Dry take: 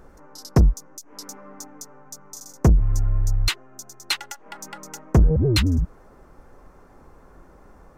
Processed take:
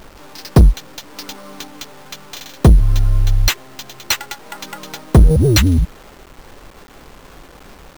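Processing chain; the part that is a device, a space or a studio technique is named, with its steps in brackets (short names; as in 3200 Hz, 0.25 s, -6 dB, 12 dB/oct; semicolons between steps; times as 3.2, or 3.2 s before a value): early 8-bit sampler (sample-rate reducer 10000 Hz, jitter 0%; bit-crush 8-bit); gain +7 dB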